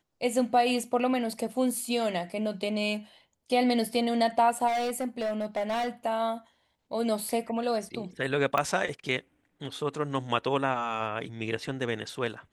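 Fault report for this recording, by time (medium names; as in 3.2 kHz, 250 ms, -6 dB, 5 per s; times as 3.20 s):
4.67–5.89 s: clipped -26 dBFS
8.58 s: pop -14 dBFS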